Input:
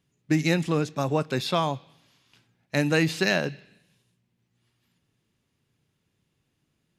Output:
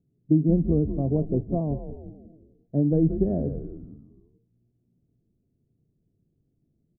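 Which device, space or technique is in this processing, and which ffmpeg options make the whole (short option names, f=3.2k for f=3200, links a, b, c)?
under water: -filter_complex "[0:a]asettb=1/sr,asplit=3[a][b][c];[a]atrim=end=1.154[d];[b]atrim=start=1.15:end=1.61,asetpts=PTS-STARTPTS,afade=t=in:d=0.004:c=qsin,afade=t=out:st=0.456:d=0.004:c=qsin,lowpass=f=1.2k:w=0.5412,lowpass=f=1.2k:w=1.3066[e];[c]atrim=start=1.606[f];[d][e]acrossfade=d=0.004:c1=hsin:c2=qsin[g];[g][f]acrossfade=d=0.004:c1=qsin:c2=hsin,asplit=6[h][i][j][k][l][m];[i]adelay=178,afreqshift=-120,volume=-10dB[n];[j]adelay=356,afreqshift=-240,volume=-16.9dB[o];[k]adelay=534,afreqshift=-360,volume=-23.9dB[p];[l]adelay=712,afreqshift=-480,volume=-30.8dB[q];[m]adelay=890,afreqshift=-600,volume=-37.7dB[r];[h][n][o][p][q][r]amix=inputs=6:normalize=0,lowpass=f=420:w=0.5412,lowpass=f=420:w=1.3066,equalizer=f=680:t=o:w=0.2:g=10.5,volume=3.5dB"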